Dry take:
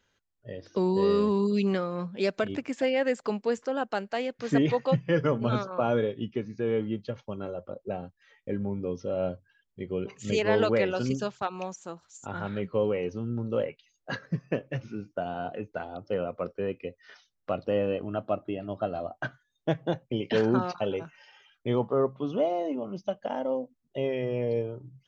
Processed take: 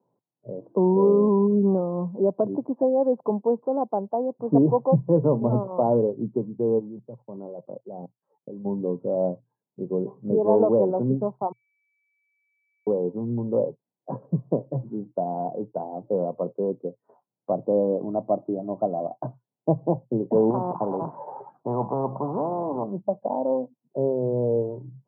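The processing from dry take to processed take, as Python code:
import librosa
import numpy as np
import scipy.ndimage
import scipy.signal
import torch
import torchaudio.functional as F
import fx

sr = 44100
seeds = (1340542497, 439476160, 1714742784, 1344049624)

y = fx.level_steps(x, sr, step_db=21, at=(6.78, 8.64), fade=0.02)
y = fx.spectral_comp(y, sr, ratio=4.0, at=(20.5, 22.84))
y = fx.edit(y, sr, fx.bleep(start_s=11.52, length_s=1.35, hz=2300.0, db=-19.5), tone=tone)
y = scipy.signal.sosfilt(scipy.signal.cheby1(5, 1.0, [120.0, 1000.0], 'bandpass', fs=sr, output='sos'), y)
y = y * 10.0 ** (6.0 / 20.0)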